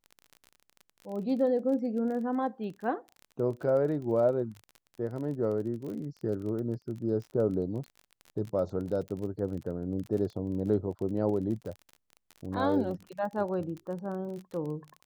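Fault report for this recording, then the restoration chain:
crackle 32/s -37 dBFS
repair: de-click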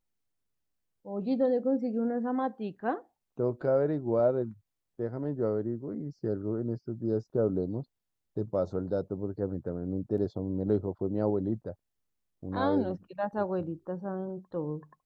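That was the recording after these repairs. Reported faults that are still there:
none

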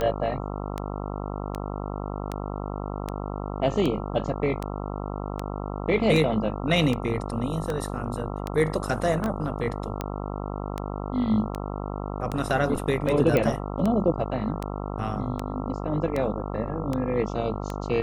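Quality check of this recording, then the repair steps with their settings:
buzz 50 Hz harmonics 27 -32 dBFS
tick 78 rpm -15 dBFS
9.26 pop -18 dBFS
13.37 pop -11 dBFS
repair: de-click; de-hum 50 Hz, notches 27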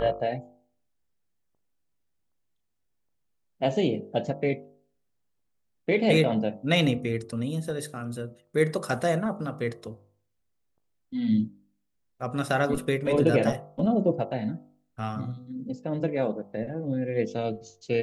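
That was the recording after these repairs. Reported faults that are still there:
9.26 pop

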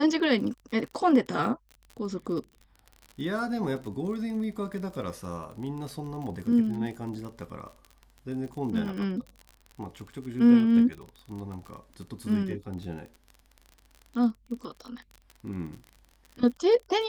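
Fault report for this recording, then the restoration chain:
crackle 39/s -36 dBFS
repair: de-click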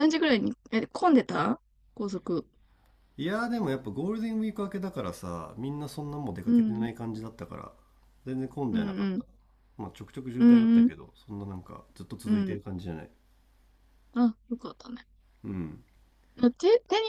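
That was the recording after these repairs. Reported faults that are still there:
none

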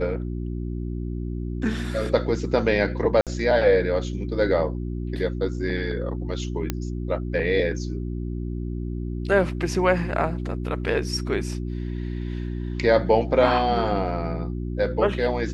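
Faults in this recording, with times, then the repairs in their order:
hum 60 Hz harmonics 6 -29 dBFS
3.21–3.27 gap 57 ms
6.7 pop -10 dBFS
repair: de-click; de-hum 60 Hz, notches 6; interpolate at 3.21, 57 ms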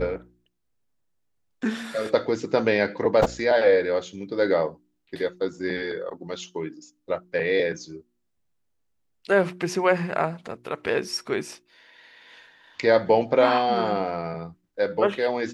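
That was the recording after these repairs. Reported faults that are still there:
6.7 pop

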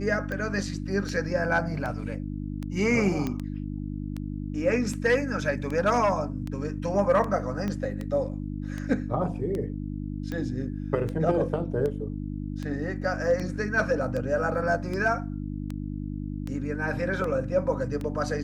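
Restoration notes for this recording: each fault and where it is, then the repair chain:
hum 50 Hz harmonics 6 -33 dBFS
tick 78 rpm -21 dBFS
3.27 pop -17 dBFS
7.68 pop -19 dBFS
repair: de-click; de-hum 50 Hz, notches 6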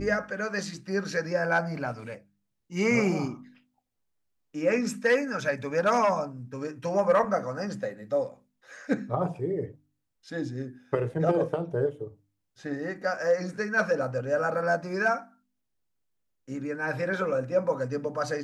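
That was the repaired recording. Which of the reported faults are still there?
7.68 pop

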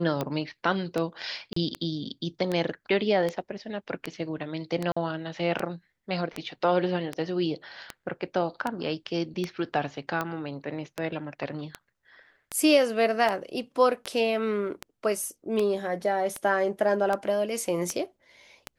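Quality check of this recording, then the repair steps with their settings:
tick 78 rpm -15 dBFS
1.53–1.56 gap 34 ms
4.92–4.96 gap 45 ms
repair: de-click; interpolate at 1.53, 34 ms; interpolate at 4.92, 45 ms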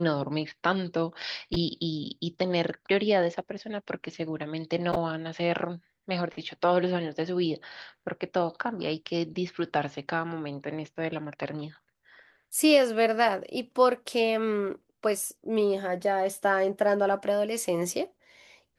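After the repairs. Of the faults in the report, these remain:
none

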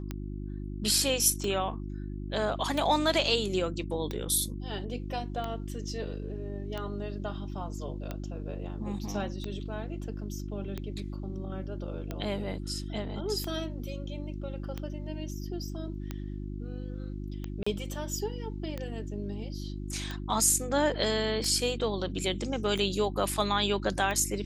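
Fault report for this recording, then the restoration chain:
hum 50 Hz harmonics 7 -37 dBFS
tick 45 rpm -21 dBFS
17.63–17.66 gap 35 ms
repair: de-click; de-hum 50 Hz, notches 7; interpolate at 17.63, 35 ms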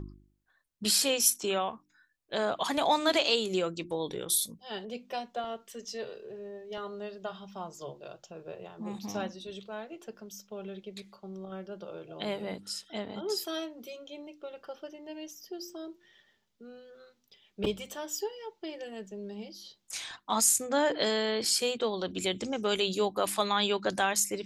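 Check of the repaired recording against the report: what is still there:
none

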